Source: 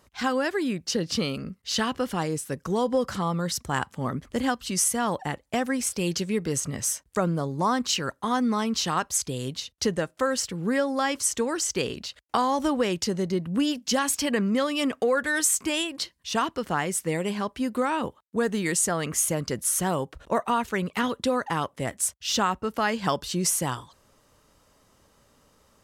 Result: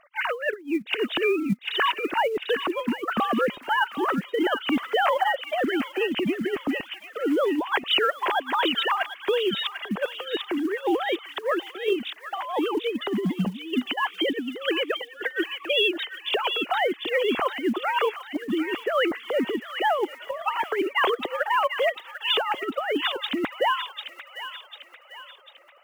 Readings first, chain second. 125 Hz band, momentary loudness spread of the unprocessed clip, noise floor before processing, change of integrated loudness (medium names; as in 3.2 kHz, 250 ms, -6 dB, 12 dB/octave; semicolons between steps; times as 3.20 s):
-8.5 dB, 6 LU, -64 dBFS, +1.0 dB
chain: formants replaced by sine waves; short-mantissa float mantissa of 4-bit; compressor with a negative ratio -30 dBFS, ratio -0.5; on a send: feedback echo behind a high-pass 746 ms, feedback 45%, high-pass 1.8 kHz, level -5 dB; on the sum: trim +5.5 dB